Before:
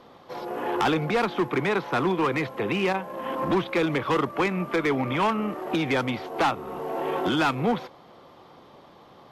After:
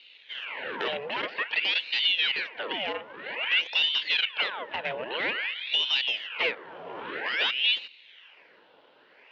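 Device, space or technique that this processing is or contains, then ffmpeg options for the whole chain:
voice changer toy: -af "aeval=exprs='val(0)*sin(2*PI*1800*n/s+1800*0.85/0.51*sin(2*PI*0.51*n/s))':c=same,highpass=410,equalizer=f=490:t=q:w=4:g=4,equalizer=f=730:t=q:w=4:g=-6,equalizer=f=1200:t=q:w=4:g=-9,equalizer=f=2900:t=q:w=4:g=7,lowpass=f=4000:w=0.5412,lowpass=f=4000:w=1.3066,volume=0.841"

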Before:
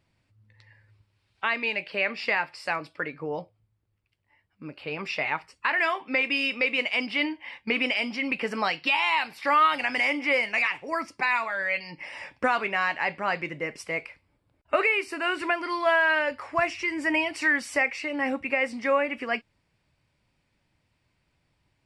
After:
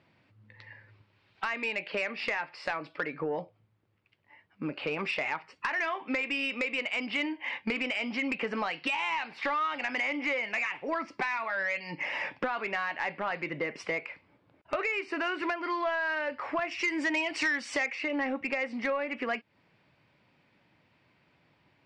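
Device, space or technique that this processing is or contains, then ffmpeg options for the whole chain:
AM radio: -filter_complex "[0:a]highpass=160,lowpass=3300,acompressor=threshold=0.0141:ratio=5,asoftclip=type=tanh:threshold=0.0335,lowpass=9800,asettb=1/sr,asplit=3[s0][s1][s2];[s0]atrim=end=16.714[s3];[s1]atrim=start=16.71:end=17.95,asetpts=PTS-STARTPTS,afade=t=in:d=0.004:c=qsin,afade=t=out:st=1.236:d=0.004:c=qsin,equalizer=f=8100:t=o:w=1.9:g=11[s4];[s2]atrim=start=17.946[s5];[s3][s4]acrossfade=d=0.004:c1=hsin:c2=qsin[s6];[s6][s5]acrossfade=d=0.004:c1=qsin:c2=hsin,volume=2.66"

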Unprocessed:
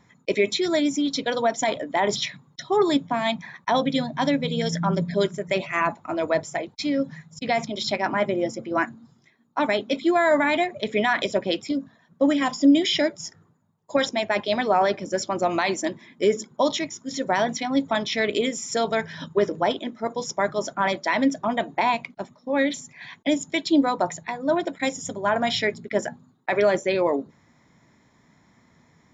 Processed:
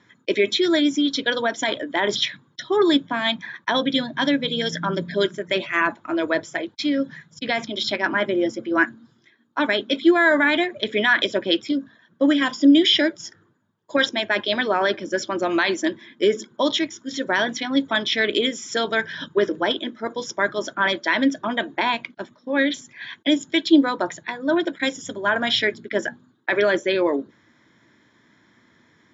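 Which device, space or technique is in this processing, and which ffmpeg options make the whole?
car door speaker: -af "highpass=100,equalizer=f=160:t=q:w=4:g=-7,equalizer=f=330:t=q:w=4:g=7,equalizer=f=760:t=q:w=4:g=-6,equalizer=f=1600:t=q:w=4:g=10,equalizer=f=3300:t=q:w=4:g=9,lowpass=f=6800:w=0.5412,lowpass=f=6800:w=1.3066"

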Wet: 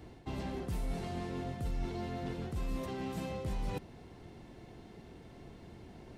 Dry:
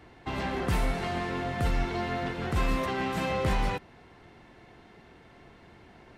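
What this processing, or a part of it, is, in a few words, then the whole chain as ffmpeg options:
compression on the reversed sound: -af "areverse,acompressor=threshold=0.0141:ratio=6,areverse,equalizer=f=1600:w=0.51:g=-12,volume=1.68"

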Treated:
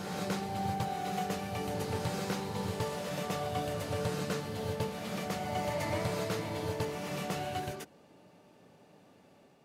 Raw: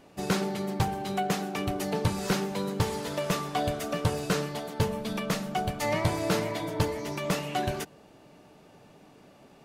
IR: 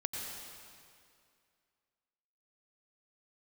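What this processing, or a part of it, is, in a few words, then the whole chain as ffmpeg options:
reverse reverb: -filter_complex "[0:a]highpass=75,equalizer=f=530:w=5.7:g=3.5,areverse[s0];[1:a]atrim=start_sample=2205[s1];[s0][s1]afir=irnorm=-1:irlink=0,areverse,volume=0.398"

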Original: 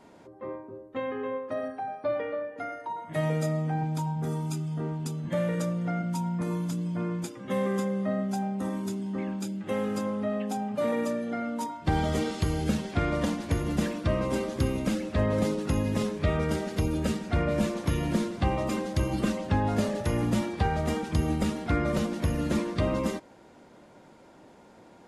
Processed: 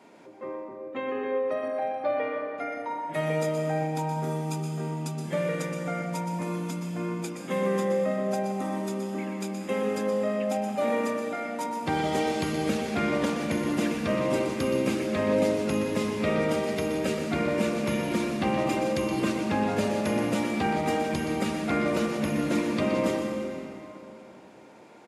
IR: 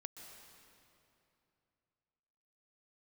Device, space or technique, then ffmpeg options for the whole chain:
PA in a hall: -filter_complex "[0:a]highpass=200,equalizer=f=2400:t=o:w=0.34:g=6,aecho=1:1:122:0.335[s0];[1:a]atrim=start_sample=2205[s1];[s0][s1]afir=irnorm=-1:irlink=0,volume=2.11"

